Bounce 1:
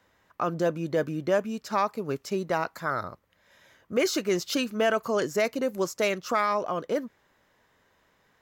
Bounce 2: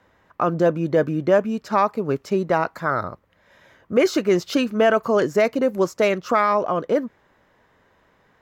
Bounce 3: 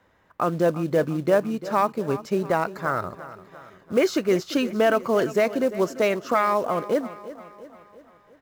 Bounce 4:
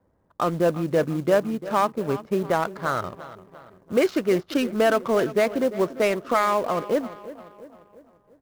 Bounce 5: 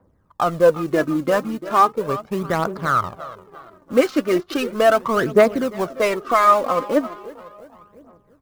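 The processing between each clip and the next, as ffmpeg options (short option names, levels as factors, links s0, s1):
-af "highshelf=f=3200:g=-12,volume=2.51"
-filter_complex "[0:a]aecho=1:1:345|690|1035|1380|1725:0.168|0.0873|0.0454|0.0236|0.0123,asplit=2[s0][s1];[s1]acrusher=bits=4:mode=log:mix=0:aa=0.000001,volume=0.708[s2];[s0][s2]amix=inputs=2:normalize=0,volume=0.422"
-af "adynamicsmooth=sensitivity=7:basefreq=590,acrusher=bits=6:mode=log:mix=0:aa=0.000001"
-af "equalizer=f=1200:w=4.2:g=6.5,aphaser=in_gain=1:out_gain=1:delay=4:decay=0.57:speed=0.37:type=triangular,volume=1.19"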